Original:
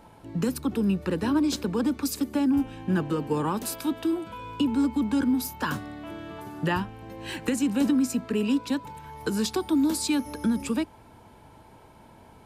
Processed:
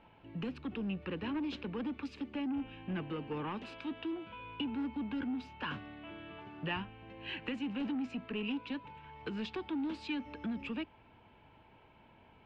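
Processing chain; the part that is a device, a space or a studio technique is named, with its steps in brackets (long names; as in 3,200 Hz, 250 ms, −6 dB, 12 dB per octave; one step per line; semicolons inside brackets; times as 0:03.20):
overdriven synthesiser ladder filter (soft clipping −20.5 dBFS, distortion −17 dB; transistor ladder low-pass 3,100 Hz, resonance 60%)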